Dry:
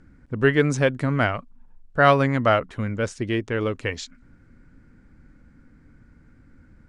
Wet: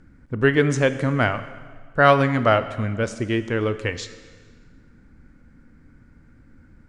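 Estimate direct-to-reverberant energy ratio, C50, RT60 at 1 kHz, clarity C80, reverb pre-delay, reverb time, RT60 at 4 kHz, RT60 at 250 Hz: 11.5 dB, 13.0 dB, 1.6 s, 14.0 dB, 7 ms, 1.6 s, 1.5 s, 1.6 s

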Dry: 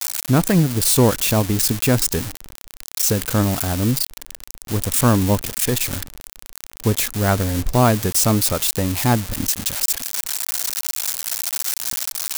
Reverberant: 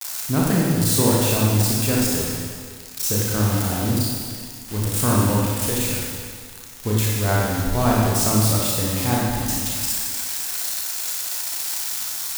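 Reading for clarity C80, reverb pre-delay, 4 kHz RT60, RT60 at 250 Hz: 0.0 dB, 29 ms, 1.8 s, 1.8 s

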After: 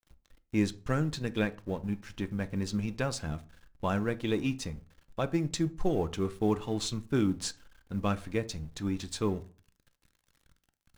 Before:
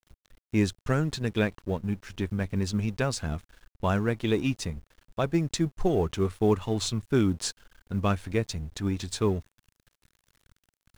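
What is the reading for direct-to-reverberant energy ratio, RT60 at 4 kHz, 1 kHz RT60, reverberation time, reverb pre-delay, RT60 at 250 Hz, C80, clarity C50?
10.5 dB, 0.25 s, 0.40 s, 0.40 s, 4 ms, 0.45 s, 24.5 dB, 20.0 dB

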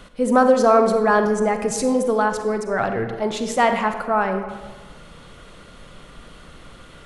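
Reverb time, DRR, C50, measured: 1.4 s, 6.5 dB, 7.5 dB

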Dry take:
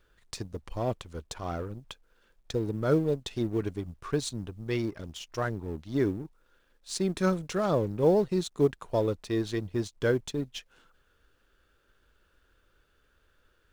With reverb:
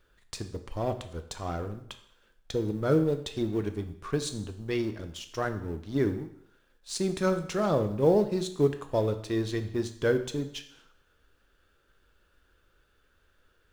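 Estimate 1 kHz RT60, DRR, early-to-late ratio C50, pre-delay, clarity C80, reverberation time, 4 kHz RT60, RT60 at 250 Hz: 0.70 s, 8.0 dB, 11.5 dB, 10 ms, 14.5 dB, 0.70 s, 0.65 s, 0.65 s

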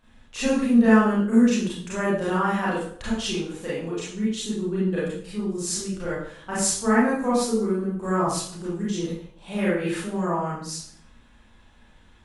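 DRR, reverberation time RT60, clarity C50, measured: -9.0 dB, 0.60 s, -0.5 dB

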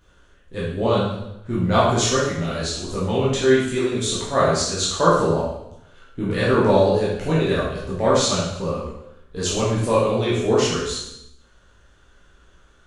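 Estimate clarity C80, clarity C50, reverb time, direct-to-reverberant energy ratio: 4.5 dB, 0.5 dB, 0.85 s, -8.5 dB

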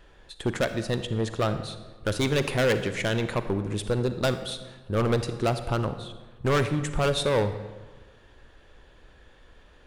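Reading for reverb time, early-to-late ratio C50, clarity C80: 1.3 s, 11.0 dB, 12.0 dB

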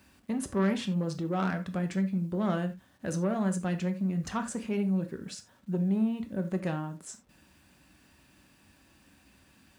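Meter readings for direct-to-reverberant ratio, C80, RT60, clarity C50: 6.5 dB, 19.0 dB, no single decay rate, 13.0 dB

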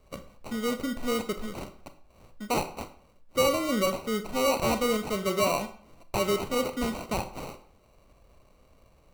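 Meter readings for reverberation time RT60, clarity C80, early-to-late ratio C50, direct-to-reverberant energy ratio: 0.55 s, 16.0 dB, 12.0 dB, 9.0 dB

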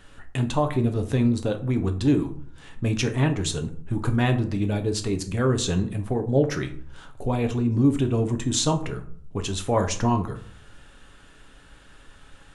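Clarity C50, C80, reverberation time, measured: 13.0 dB, 17.0 dB, 0.55 s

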